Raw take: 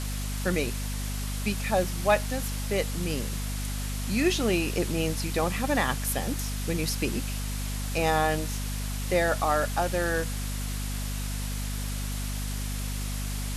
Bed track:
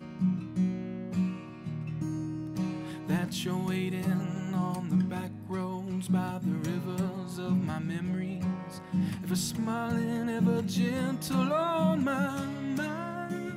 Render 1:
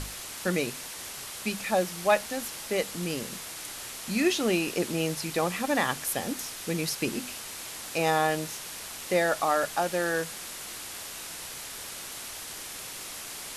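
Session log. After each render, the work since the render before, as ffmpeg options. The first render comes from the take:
-af "bandreject=f=50:t=h:w=6,bandreject=f=100:t=h:w=6,bandreject=f=150:t=h:w=6,bandreject=f=200:t=h:w=6,bandreject=f=250:t=h:w=6"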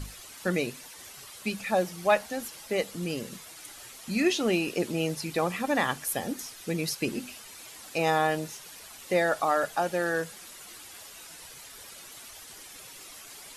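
-af "afftdn=nr=10:nf=-40"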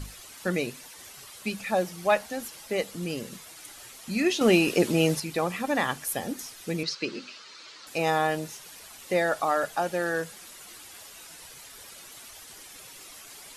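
-filter_complex "[0:a]asettb=1/sr,asplit=3[a][b][c];[a]atrim=end=4.414[d];[b]atrim=start=4.41:end=5.2,asetpts=PTS-STARTPTS,afade=t=in:d=0.004:c=qsin,afade=t=out:st=0.786:d=0.004:c=qsin,acontrast=62[e];[c]atrim=start=5.196[f];[d][e]acrossfade=d=0.004:c1=hsin:c2=qsin[g];[g][f]acrossfade=d=0.004:c1=qsin:c2=hsin,asettb=1/sr,asplit=3[h][i][j];[h]atrim=end=6.834[k];[i]atrim=start=6.83:end=7.87,asetpts=PTS-STARTPTS,afade=t=in:d=0.004:c=qsin,afade=t=out:st=1.036:d=0.004:c=qsin,highpass=220,equalizer=f=240:t=q:w=4:g=-7,equalizer=f=740:t=q:w=4:g=-9,equalizer=f=1.3k:t=q:w=4:g=6,equalizer=f=4.3k:t=q:w=4:g=7,lowpass=f=5.9k:w=0.5412,lowpass=f=5.9k:w=1.3066[l];[j]atrim=start=7.866[m];[k][l]acrossfade=d=0.004:c1=hsin:c2=qsin[n];[n][m]acrossfade=d=0.004:c1=qsin:c2=hsin"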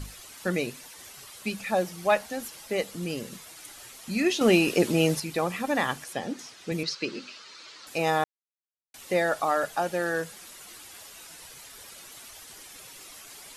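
-filter_complex "[0:a]asettb=1/sr,asplit=3[a][b][c];[a]atrim=end=6.044[d];[b]atrim=start=6.04:end=6.72,asetpts=PTS-STARTPTS,afade=t=in:d=0.004:c=qsin,afade=t=out:st=0.676:d=0.004:c=qsin,highpass=110,lowpass=5.9k[e];[c]atrim=start=6.716[f];[d][e]acrossfade=d=0.004:c1=hsin:c2=qsin[g];[g][f]acrossfade=d=0.004:c1=qsin:c2=hsin,asplit=3[h][i][j];[h]atrim=end=8.24,asetpts=PTS-STARTPTS,afade=t=out:st=8.236:d=0.004:c=hsin[k];[i]atrim=start=8.24:end=8.94,asetpts=PTS-STARTPTS,volume=0[l];[j]atrim=start=8.94,asetpts=PTS-STARTPTS,afade=t=in:d=0.004:c=hsin[m];[k][l][m]concat=n=3:v=0:a=1"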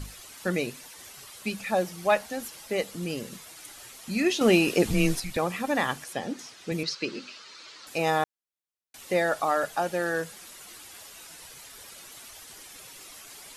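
-filter_complex "[0:a]asettb=1/sr,asplit=3[a][b][c];[a]atrim=end=4.854[d];[b]atrim=start=4.85:end=5.37,asetpts=PTS-STARTPTS,afade=t=in:d=0.004:c=qsin,afade=t=out:st=0.516:d=0.004:c=qsin,afreqshift=-150[e];[c]atrim=start=5.366[f];[d][e]acrossfade=d=0.004:c1=hsin:c2=qsin[g];[g][f]acrossfade=d=0.004:c1=qsin:c2=hsin"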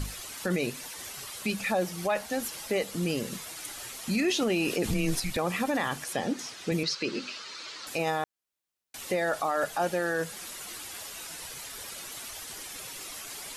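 -filter_complex "[0:a]asplit=2[a][b];[b]acompressor=threshold=-34dB:ratio=6,volume=-1.5dB[c];[a][c]amix=inputs=2:normalize=0,alimiter=limit=-19dB:level=0:latency=1:release=17"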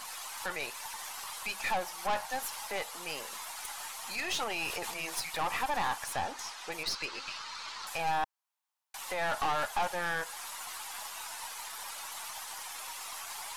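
-af "highpass=f=900:t=q:w=3.7,aeval=exprs='(tanh(22.4*val(0)+0.55)-tanh(0.55))/22.4':c=same"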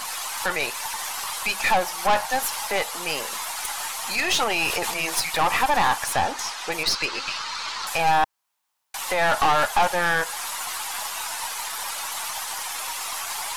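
-af "volume=11.5dB"

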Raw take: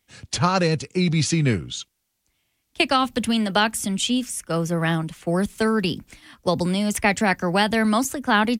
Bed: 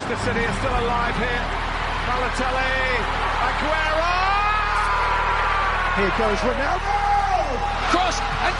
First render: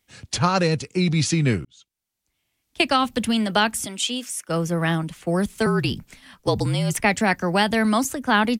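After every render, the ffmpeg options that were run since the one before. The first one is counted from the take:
-filter_complex "[0:a]asettb=1/sr,asplit=3[a][b][c];[a]atrim=end=3.864[d];[b]atrim=start=3.86:end=4.49,asetpts=PTS-STARTPTS,afade=t=in:d=0.004:c=qsin,afade=t=out:st=0.626:d=0.004:c=qsin,highpass=390[e];[c]atrim=start=4.486[f];[d][e]acrossfade=d=0.004:c1=hsin:c2=qsin[g];[g][f]acrossfade=d=0.004:c1=qsin:c2=hsin,asettb=1/sr,asplit=3[h][i][j];[h]atrim=end=5.664[k];[i]atrim=start=5.66:end=7,asetpts=PTS-STARTPTS,afade=t=in:d=0.004:c=qsin,afade=t=out:st=1.336:d=0.004:c=qsin,afreqshift=-46[l];[j]atrim=start=6.996[m];[k][l]acrossfade=d=0.004:c1=hsin:c2=qsin[n];[n][m]acrossfade=d=0.004:c1=qsin:c2=hsin,asplit=2[o][p];[o]atrim=end=1.65,asetpts=PTS-STARTPTS,afade=t=out:st=1.646:d=0.004:c=hsin[q];[p]atrim=start=1.65,asetpts=PTS-STARTPTS,afade=t=in:d=1.17[r];[q][r]concat=n=2:v=0:a=1"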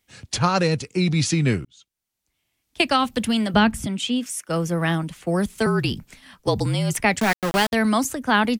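-filter_complex "[0:a]asettb=1/sr,asplit=3[a][b][c];[a]atrim=end=3.544[d];[b]atrim=start=3.54:end=4.26,asetpts=PTS-STARTPTS,afade=t=in:d=0.004:c=qsin,afade=t=out:st=0.716:d=0.004:c=qsin,bass=f=250:g=15,treble=f=4k:g=-8[e];[c]atrim=start=4.256[f];[d][e]acrossfade=d=0.004:c1=hsin:c2=qsin[g];[g][f]acrossfade=d=0.004:c1=qsin:c2=hsin,asplit=3[h][i][j];[h]afade=t=out:st=7.19:d=0.02[k];[i]aeval=exprs='val(0)*gte(abs(val(0)),0.0891)':c=same,afade=t=in:st=7.19:d=0.02,afade=t=out:st=7.72:d=0.02[l];[j]afade=t=in:st=7.72:d=0.02[m];[k][l][m]amix=inputs=3:normalize=0"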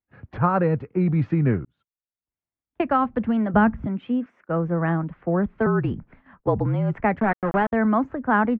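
-af "lowpass=f=1.6k:w=0.5412,lowpass=f=1.6k:w=1.3066,agate=range=-17dB:threshold=-52dB:ratio=16:detection=peak"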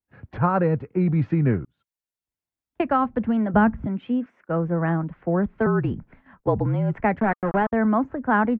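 -af "bandreject=f=1.2k:w=17,adynamicequalizer=threshold=0.0158:dfrequency=1800:dqfactor=0.7:tfrequency=1800:tqfactor=0.7:attack=5:release=100:ratio=0.375:range=2.5:mode=cutabove:tftype=highshelf"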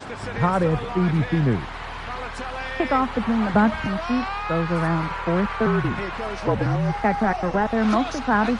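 -filter_complex "[1:a]volume=-9dB[a];[0:a][a]amix=inputs=2:normalize=0"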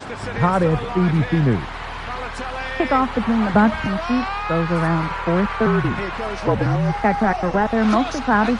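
-af "volume=3dB"

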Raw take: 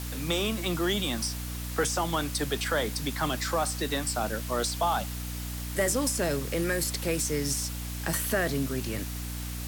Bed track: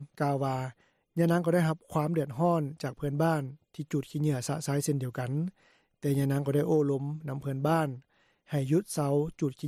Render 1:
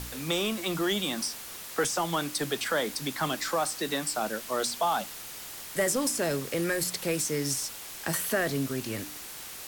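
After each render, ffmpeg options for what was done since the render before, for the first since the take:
-af "bandreject=f=60:t=h:w=4,bandreject=f=120:t=h:w=4,bandreject=f=180:t=h:w=4,bandreject=f=240:t=h:w=4,bandreject=f=300:t=h:w=4"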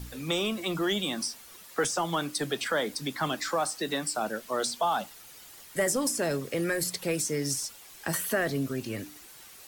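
-af "afftdn=nr=10:nf=-42"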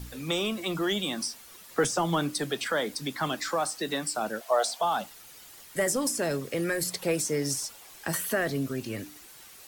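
-filter_complex "[0:a]asettb=1/sr,asplit=3[a][b][c];[a]atrim=end=1.694[d];[b]atrim=start=1.69:end=2.41,asetpts=PTS-STARTPTS,afade=t=in:d=0.004:c=qsin,afade=t=out:st=0.716:d=0.004:c=qsin,lowshelf=f=430:g=7[e];[c]atrim=start=2.406[f];[d][e]acrossfade=d=0.004:c1=hsin:c2=qsin[g];[g][f]acrossfade=d=0.004:c1=qsin:c2=hsin,asettb=1/sr,asplit=3[h][i][j];[h]atrim=end=4.414[k];[i]atrim=start=4.41:end=4.81,asetpts=PTS-STARTPTS,afade=t=in:d=0.004:c=qsin,afade=t=out:st=0.396:d=0.004:c=qsin,highpass=f=690:t=q:w=6.2[l];[j]atrim=start=4.806[m];[k][l]acrossfade=d=0.004:c1=hsin:c2=qsin[n];[n][m]acrossfade=d=0.004:c1=qsin:c2=hsin,asettb=1/sr,asplit=3[o][p][q];[o]atrim=end=6.884[r];[p]atrim=start=6.88:end=7.99,asetpts=PTS-STARTPTS,afade=t=in:d=0.004:c=qsin,afade=t=out:st=1.106:d=0.004:c=qsin,equalizer=f=720:w=0.82:g=4.5[s];[q]atrim=start=7.986[t];[r][s]acrossfade=d=0.004:c1=hsin:c2=qsin[u];[u][t]acrossfade=d=0.004:c1=qsin:c2=hsin"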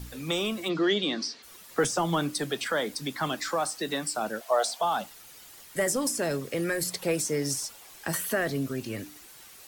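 -filter_complex "[0:a]asplit=3[a][b][c];[a]afade=t=out:st=0.68:d=0.02[d];[b]highpass=150,equalizer=f=300:t=q:w=4:g=6,equalizer=f=430:t=q:w=4:g=7,equalizer=f=860:t=q:w=4:g=-4,equalizer=f=1.9k:t=q:w=4:g=4,equalizer=f=4.3k:t=q:w=4:g=8,lowpass=f=5.7k:w=0.5412,lowpass=f=5.7k:w=1.3066,afade=t=in:st=0.68:d=0.02,afade=t=out:st=1.42:d=0.02[e];[c]afade=t=in:st=1.42:d=0.02[f];[d][e][f]amix=inputs=3:normalize=0"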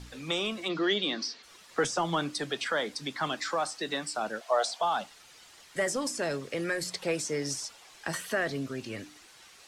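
-af "lowpass=6.4k,lowshelf=f=450:g=-6"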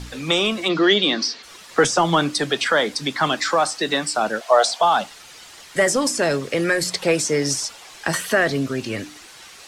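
-af "volume=11.5dB"

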